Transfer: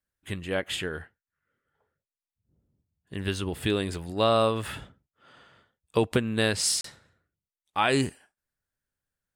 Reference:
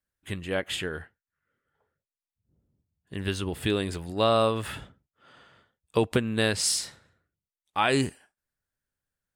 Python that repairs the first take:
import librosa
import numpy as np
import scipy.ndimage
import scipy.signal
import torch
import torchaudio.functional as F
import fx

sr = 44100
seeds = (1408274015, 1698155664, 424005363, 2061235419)

y = fx.fix_interpolate(x, sr, at_s=(6.81,), length_ms=33.0)